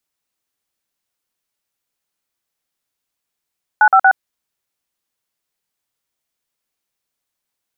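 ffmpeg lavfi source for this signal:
-f lavfi -i "aevalsrc='0.355*clip(min(mod(t,0.117),0.069-mod(t,0.117))/0.002,0,1)*(eq(floor(t/0.117),0)*(sin(2*PI*852*mod(t,0.117))+sin(2*PI*1477*mod(t,0.117)))+eq(floor(t/0.117),1)*(sin(2*PI*770*mod(t,0.117))+sin(2*PI*1336*mod(t,0.117)))+eq(floor(t/0.117),2)*(sin(2*PI*770*mod(t,0.117))+sin(2*PI*1477*mod(t,0.117))))':d=0.351:s=44100"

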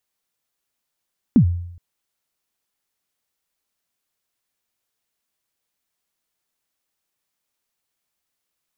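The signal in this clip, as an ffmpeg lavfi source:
-f lavfi -i "aevalsrc='0.473*pow(10,-3*t/0.74)*sin(2*PI*(280*0.089/log(87/280)*(exp(log(87/280)*min(t,0.089)/0.089)-1)+87*max(t-0.089,0)))':d=0.42:s=44100"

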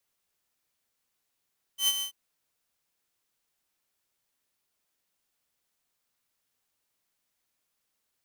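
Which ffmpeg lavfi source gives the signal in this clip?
-f lavfi -i "aevalsrc='0.126*(2*mod(3070*t,1)-1)':d=0.336:s=44100,afade=t=in:d=0.099,afade=t=out:st=0.099:d=0.043:silence=0.355,afade=t=out:st=0.24:d=0.096"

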